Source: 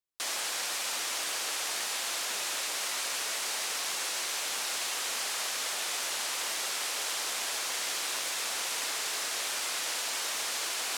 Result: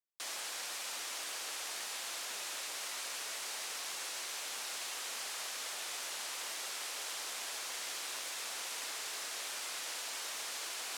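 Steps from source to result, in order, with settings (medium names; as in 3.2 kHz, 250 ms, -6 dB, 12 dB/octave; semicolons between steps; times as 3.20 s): high-pass 140 Hz 6 dB/octave; trim -8 dB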